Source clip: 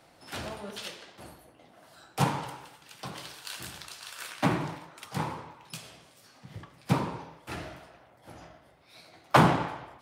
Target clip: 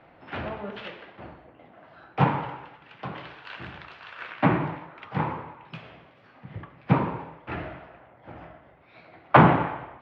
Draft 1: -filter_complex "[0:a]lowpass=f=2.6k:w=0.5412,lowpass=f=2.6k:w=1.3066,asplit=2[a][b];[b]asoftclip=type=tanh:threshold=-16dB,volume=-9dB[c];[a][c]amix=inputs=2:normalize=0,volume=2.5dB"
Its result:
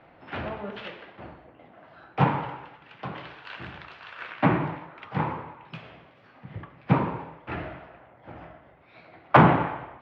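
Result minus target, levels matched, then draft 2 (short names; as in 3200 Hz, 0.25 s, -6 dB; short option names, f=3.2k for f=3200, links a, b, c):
soft clip: distortion +9 dB
-filter_complex "[0:a]lowpass=f=2.6k:w=0.5412,lowpass=f=2.6k:w=1.3066,asplit=2[a][b];[b]asoftclip=type=tanh:threshold=-8.5dB,volume=-9dB[c];[a][c]amix=inputs=2:normalize=0,volume=2.5dB"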